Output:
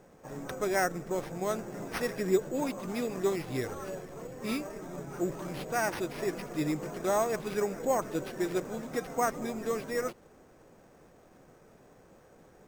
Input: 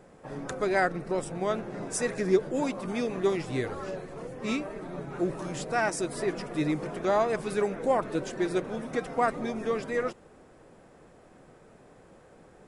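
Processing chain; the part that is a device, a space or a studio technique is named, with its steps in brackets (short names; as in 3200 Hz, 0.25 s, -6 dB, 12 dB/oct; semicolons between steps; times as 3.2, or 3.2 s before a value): crushed at another speed (playback speed 0.5×; sample-and-hold 12×; playback speed 2×); gain -3 dB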